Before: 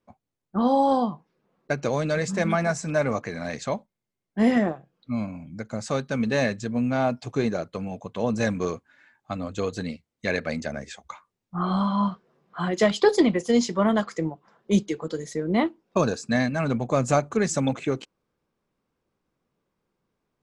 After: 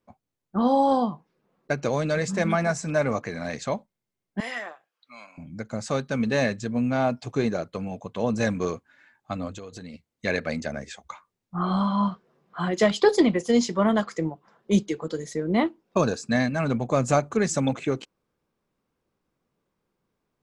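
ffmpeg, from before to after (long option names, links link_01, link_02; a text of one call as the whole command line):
ffmpeg -i in.wav -filter_complex "[0:a]asettb=1/sr,asplit=3[link_01][link_02][link_03];[link_01]atrim=end=4.404[link_04];[link_02]atrim=start=4.4:end=5.38,asetpts=PTS-STARTPTS,afade=type=in:duration=0.004:curve=qsin,afade=type=out:start_time=0.976:duration=0.004:curve=qsin,highpass=1200[link_05];[link_03]atrim=start=5.376[link_06];[link_04][link_05]acrossfade=duration=0.004:curve1=hsin:curve2=qsin[link_07];[link_07][link_06]acrossfade=duration=0.004:curve1=qsin:curve2=hsin,asplit=3[link_08][link_09][link_10];[link_08]afade=type=out:start_time=9.53:duration=0.02[link_11];[link_09]acompressor=threshold=-36dB:ratio=8:attack=3.2:release=140:knee=1:detection=peak,afade=type=in:start_time=9.53:duration=0.02,afade=type=out:start_time=9.93:duration=0.02[link_12];[link_10]afade=type=in:start_time=9.93:duration=0.02[link_13];[link_11][link_12][link_13]amix=inputs=3:normalize=0" out.wav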